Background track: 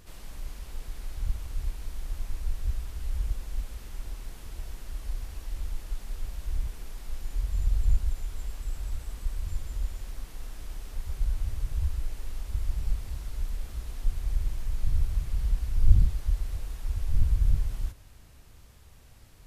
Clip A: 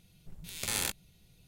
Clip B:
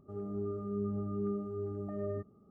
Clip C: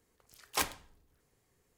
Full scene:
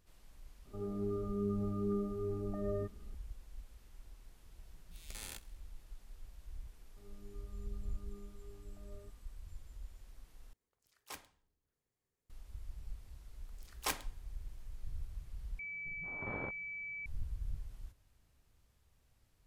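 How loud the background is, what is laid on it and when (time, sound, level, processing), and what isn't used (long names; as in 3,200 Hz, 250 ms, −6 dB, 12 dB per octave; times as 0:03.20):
background track −17.5 dB
0:00.65: mix in B −0.5 dB
0:04.47: mix in A −15.5 dB + repeating echo 66 ms, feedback 56%, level −21 dB
0:06.88: mix in B −12 dB + tuned comb filter 120 Hz, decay 1.8 s
0:10.53: overwrite with C −17 dB
0:13.29: mix in C −5 dB
0:15.59: overwrite with A −5.5 dB + switching amplifier with a slow clock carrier 2,300 Hz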